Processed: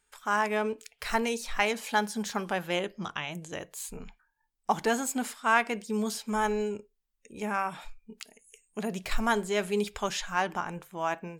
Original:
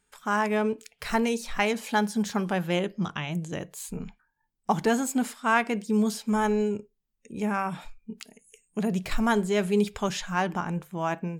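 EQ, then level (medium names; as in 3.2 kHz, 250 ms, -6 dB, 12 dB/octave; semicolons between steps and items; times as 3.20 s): dynamic bell 220 Hz, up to +3 dB, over -34 dBFS, Q 2.4; peaking EQ 170 Hz -11.5 dB 1.9 oct; 0.0 dB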